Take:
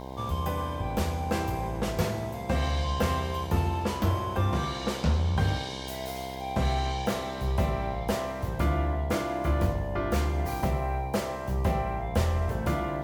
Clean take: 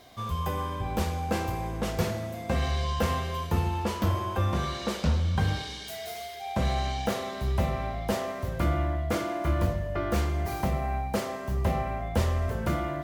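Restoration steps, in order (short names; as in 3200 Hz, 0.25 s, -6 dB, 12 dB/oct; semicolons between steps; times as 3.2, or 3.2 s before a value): de-hum 65.4 Hz, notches 16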